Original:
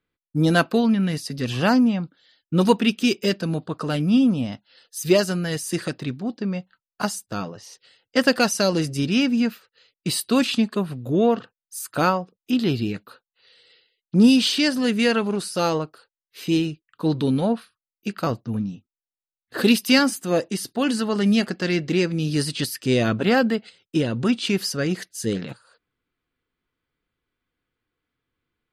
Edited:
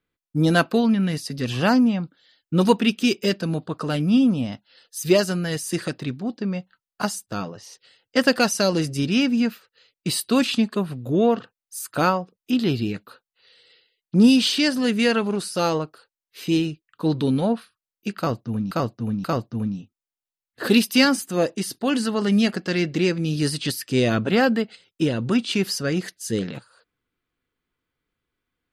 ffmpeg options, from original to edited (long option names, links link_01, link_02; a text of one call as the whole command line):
ffmpeg -i in.wav -filter_complex "[0:a]asplit=3[link_01][link_02][link_03];[link_01]atrim=end=18.712[link_04];[link_02]atrim=start=18.178:end=18.712[link_05];[link_03]atrim=start=18.178[link_06];[link_04][link_05]acrossfade=duration=0.004:curve1=hsin:curve2=hsin[link_07];[link_07][link_06]acrossfade=duration=0.004:curve1=hsin:curve2=hsin" out.wav